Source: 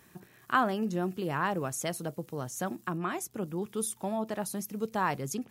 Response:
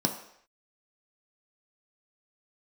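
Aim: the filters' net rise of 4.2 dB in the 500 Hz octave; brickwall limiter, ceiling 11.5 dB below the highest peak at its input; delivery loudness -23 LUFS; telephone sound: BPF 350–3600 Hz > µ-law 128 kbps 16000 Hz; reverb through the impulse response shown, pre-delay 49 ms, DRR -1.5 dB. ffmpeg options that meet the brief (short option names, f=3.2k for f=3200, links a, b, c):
-filter_complex "[0:a]equalizer=f=500:t=o:g=7,alimiter=limit=-22.5dB:level=0:latency=1,asplit=2[a][b];[1:a]atrim=start_sample=2205,adelay=49[c];[b][c]afir=irnorm=-1:irlink=0,volume=-7dB[d];[a][d]amix=inputs=2:normalize=0,highpass=350,lowpass=3.6k,volume=6.5dB" -ar 16000 -c:a pcm_mulaw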